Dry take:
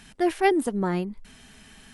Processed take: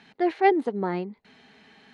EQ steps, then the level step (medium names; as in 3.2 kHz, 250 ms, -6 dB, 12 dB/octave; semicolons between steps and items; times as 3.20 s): distance through air 380 m; cabinet simulation 190–10000 Hz, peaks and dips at 440 Hz +6 dB, 810 Hz +6 dB, 2.1 kHz +5 dB, 4.2 kHz +10 dB, 6.5 kHz +9 dB; treble shelf 6.7 kHz +9 dB; -1.5 dB